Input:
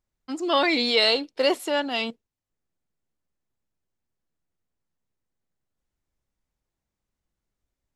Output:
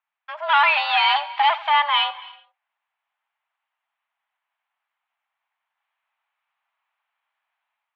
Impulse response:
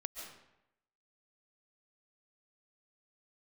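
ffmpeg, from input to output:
-filter_complex "[0:a]aeval=exprs='(tanh(17.8*val(0)+0.25)-tanh(0.25))/17.8':channel_layout=same,dynaudnorm=framelen=250:gausssize=3:maxgain=7dB,asplit=2[link_01][link_02];[1:a]atrim=start_sample=2205,afade=type=out:start_time=0.38:duration=0.01,atrim=end_sample=17199,adelay=86[link_03];[link_02][link_03]afir=irnorm=-1:irlink=0,volume=-14dB[link_04];[link_01][link_04]amix=inputs=2:normalize=0,highpass=frequency=510:width_type=q:width=0.5412,highpass=frequency=510:width_type=q:width=1.307,lowpass=frequency=2900:width_type=q:width=0.5176,lowpass=frequency=2900:width_type=q:width=0.7071,lowpass=frequency=2900:width_type=q:width=1.932,afreqshift=300,volume=7dB"

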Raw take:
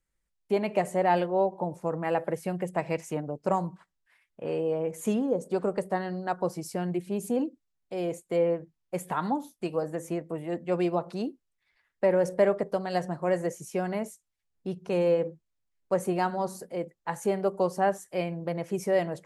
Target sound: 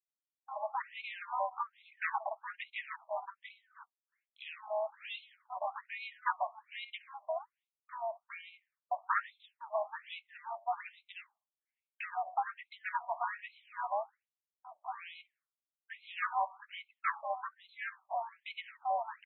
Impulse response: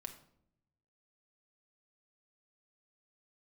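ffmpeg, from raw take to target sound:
-filter_complex "[0:a]agate=range=-33dB:threshold=-48dB:ratio=3:detection=peak,asplit=3[link_01][link_02][link_03];[link_02]asetrate=33038,aresample=44100,atempo=1.33484,volume=-12dB[link_04];[link_03]asetrate=58866,aresample=44100,atempo=0.749154,volume=-4dB[link_05];[link_01][link_04][link_05]amix=inputs=3:normalize=0,acrossover=split=340[link_06][link_07];[link_07]acompressor=threshold=-33dB:ratio=6[link_08];[link_06][link_08]amix=inputs=2:normalize=0,lowshelf=frequency=460:width_type=q:width=3:gain=8,afftfilt=real='re*between(b*sr/1024,810*pow(3000/810,0.5+0.5*sin(2*PI*1.2*pts/sr))/1.41,810*pow(3000/810,0.5+0.5*sin(2*PI*1.2*pts/sr))*1.41)':imag='im*between(b*sr/1024,810*pow(3000/810,0.5+0.5*sin(2*PI*1.2*pts/sr))/1.41,810*pow(3000/810,0.5+0.5*sin(2*PI*1.2*pts/sr))*1.41)':win_size=1024:overlap=0.75,volume=9dB"

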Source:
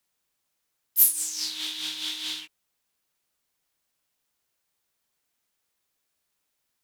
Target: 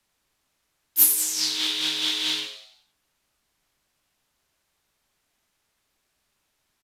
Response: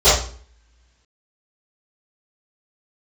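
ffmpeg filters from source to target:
-filter_complex "[0:a]highshelf=frequency=6700:gain=-8,asplit=6[link_01][link_02][link_03][link_04][link_05][link_06];[link_02]adelay=92,afreqshift=110,volume=-8.5dB[link_07];[link_03]adelay=184,afreqshift=220,volume=-16dB[link_08];[link_04]adelay=276,afreqshift=330,volume=-23.6dB[link_09];[link_05]adelay=368,afreqshift=440,volume=-31.1dB[link_10];[link_06]adelay=460,afreqshift=550,volume=-38.6dB[link_11];[link_01][link_07][link_08][link_09][link_10][link_11]amix=inputs=6:normalize=0,aresample=32000,aresample=44100,lowshelf=frequency=77:gain=9.5,bandreject=frequency=490:width=13,acrossover=split=110|1300|2400[link_12][link_13][link_14][link_15];[link_13]acrusher=bits=2:mode=log:mix=0:aa=0.000001[link_16];[link_12][link_16][link_14][link_15]amix=inputs=4:normalize=0,volume=8dB"

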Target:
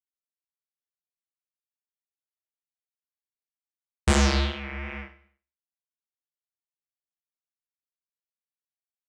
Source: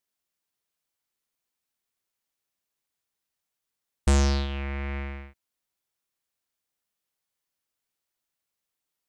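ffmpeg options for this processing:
ffmpeg -i in.wav -filter_complex "[0:a]acrossover=split=290|410|2900[link_01][link_02][link_03][link_04];[link_03]crystalizer=i=6:c=0[link_05];[link_01][link_02][link_05][link_04]amix=inputs=4:normalize=0,agate=range=-31dB:threshold=-29dB:ratio=16:detection=peak,flanger=delay=18.5:depth=7.2:speed=2.6,aecho=1:1:98|196|294:0.168|0.0537|0.0172,volume=5.5dB" out.wav

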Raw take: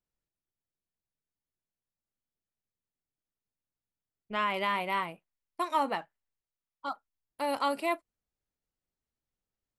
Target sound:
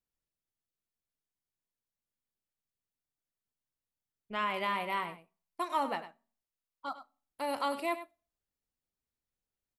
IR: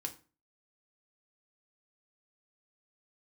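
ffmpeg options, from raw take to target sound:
-filter_complex "[0:a]aecho=1:1:100:0.237,asplit=2[link_01][link_02];[1:a]atrim=start_sample=2205,asetrate=34839,aresample=44100,highshelf=frequency=8300:gain=9[link_03];[link_02][link_03]afir=irnorm=-1:irlink=0,volume=-14dB[link_04];[link_01][link_04]amix=inputs=2:normalize=0,volume=-4.5dB"

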